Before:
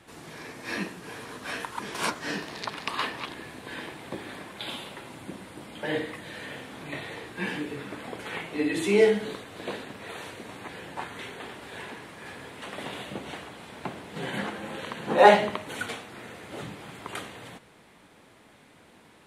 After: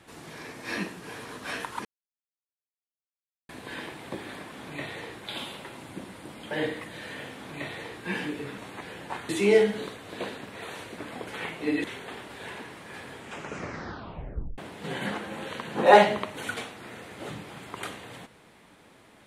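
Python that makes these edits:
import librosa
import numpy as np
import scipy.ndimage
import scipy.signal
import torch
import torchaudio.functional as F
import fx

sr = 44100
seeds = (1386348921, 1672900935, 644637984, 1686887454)

y = fx.edit(x, sr, fx.silence(start_s=1.85, length_s=1.64),
    fx.duplicate(start_s=6.67, length_s=0.68, to_s=4.53),
    fx.swap(start_s=7.9, length_s=0.86, other_s=10.45, other_length_s=0.71),
    fx.tape_stop(start_s=12.44, length_s=1.46), tone=tone)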